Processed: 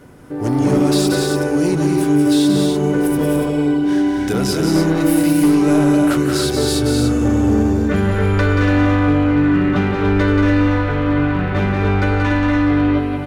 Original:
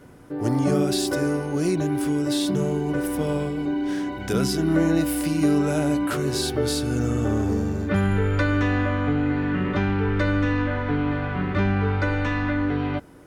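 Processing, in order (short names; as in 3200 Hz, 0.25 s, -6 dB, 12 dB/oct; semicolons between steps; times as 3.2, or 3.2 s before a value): in parallel at -3 dB: wavefolder -18 dBFS; on the sum: loudspeakers at several distances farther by 62 m -5 dB, 84 m -10 dB, 98 m -6 dB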